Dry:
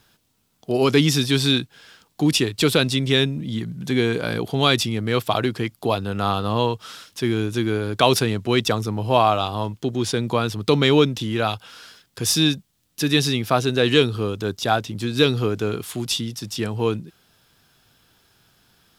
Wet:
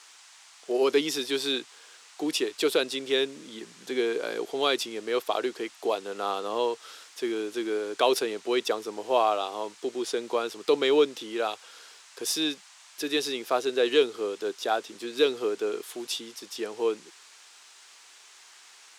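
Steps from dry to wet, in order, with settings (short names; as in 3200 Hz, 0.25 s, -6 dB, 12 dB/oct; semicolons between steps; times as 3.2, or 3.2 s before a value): ladder high-pass 330 Hz, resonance 40%; band noise 790–8200 Hz -53 dBFS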